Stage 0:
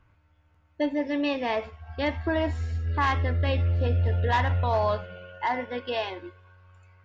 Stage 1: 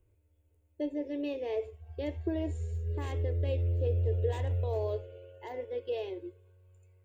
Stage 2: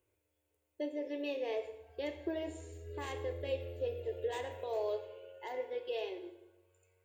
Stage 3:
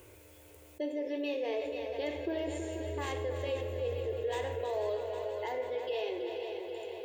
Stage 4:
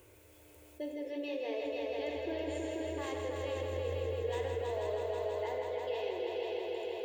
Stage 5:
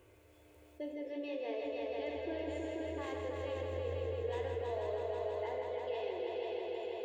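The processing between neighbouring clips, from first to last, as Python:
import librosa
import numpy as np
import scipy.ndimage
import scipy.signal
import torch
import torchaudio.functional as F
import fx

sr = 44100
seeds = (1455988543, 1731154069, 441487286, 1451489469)

y1 = fx.curve_eq(x, sr, hz=(110.0, 200.0, 290.0, 410.0, 730.0, 1300.0, 2500.0, 3600.0, 5400.0, 7900.0), db=(0, -27, -2, 10, -10, -21, -9, -9, -12, 11))
y1 = y1 * 10.0 ** (-5.5 / 20.0)
y2 = fx.highpass(y1, sr, hz=680.0, slope=6)
y2 = fx.rev_plate(y2, sr, seeds[0], rt60_s=0.94, hf_ratio=0.8, predelay_ms=0, drr_db=7.5)
y2 = y2 * 10.0 ** (2.0 / 20.0)
y3 = fx.echo_heads(y2, sr, ms=162, heads='second and third', feedback_pct=54, wet_db=-11.0)
y3 = fx.env_flatten(y3, sr, amount_pct=50)
y4 = fx.echo_feedback(y3, sr, ms=162, feedback_pct=58, wet_db=-6.5)
y4 = y4 * 10.0 ** (-4.5 / 20.0)
y5 = fx.high_shelf(y4, sr, hz=4900.0, db=-11.5)
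y5 = fx.comb_fb(y5, sr, f0_hz=230.0, decay_s=0.43, harmonics='odd', damping=0.0, mix_pct=70)
y5 = y5 * 10.0 ** (8.0 / 20.0)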